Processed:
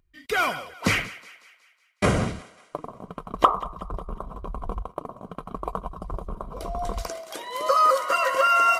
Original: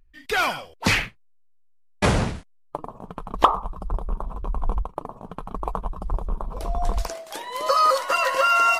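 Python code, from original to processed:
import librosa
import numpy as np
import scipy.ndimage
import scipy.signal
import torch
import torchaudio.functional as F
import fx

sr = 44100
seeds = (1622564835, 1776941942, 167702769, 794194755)

y = fx.notch_comb(x, sr, f0_hz=860.0)
y = fx.dynamic_eq(y, sr, hz=4200.0, q=1.7, threshold_db=-41.0, ratio=4.0, max_db=-6)
y = fx.echo_thinned(y, sr, ms=184, feedback_pct=51, hz=540.0, wet_db=-17)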